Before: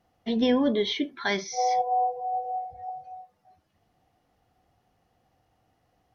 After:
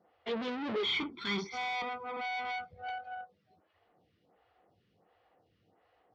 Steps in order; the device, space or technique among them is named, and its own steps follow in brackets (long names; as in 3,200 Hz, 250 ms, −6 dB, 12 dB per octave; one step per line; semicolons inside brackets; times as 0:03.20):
vibe pedal into a guitar amplifier (phaser with staggered stages 1.4 Hz; tube saturation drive 41 dB, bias 0.75; loudspeaker in its box 100–4,200 Hz, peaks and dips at 130 Hz −6 dB, 260 Hz −6 dB, 460 Hz +4 dB, 750 Hz −4 dB)
0:00.83–0:02.72: comb filter 0.9 ms, depth 86%
level +8.5 dB